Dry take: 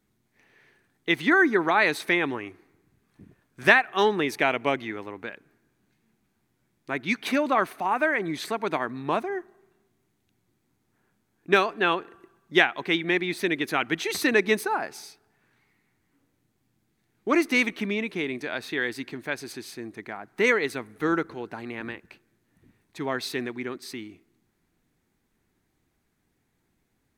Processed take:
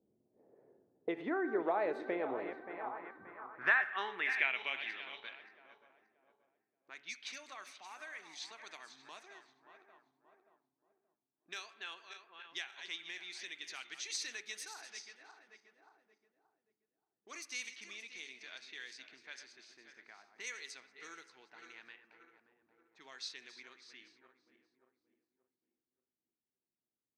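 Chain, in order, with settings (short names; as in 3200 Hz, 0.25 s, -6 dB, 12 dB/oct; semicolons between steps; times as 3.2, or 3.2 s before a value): regenerating reverse delay 0.289 s, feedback 61%, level -12 dB; spring tank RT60 1 s, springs 30/44 ms, chirp 50 ms, DRR 17.5 dB; compressor 2:1, threshold -45 dBFS, peak gain reduction 18 dB; low-pass opened by the level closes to 390 Hz, open at -33.5 dBFS; de-hum 141.1 Hz, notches 23; band-pass sweep 560 Hz -> 6100 Hz, 2.3–5.93; gain +10 dB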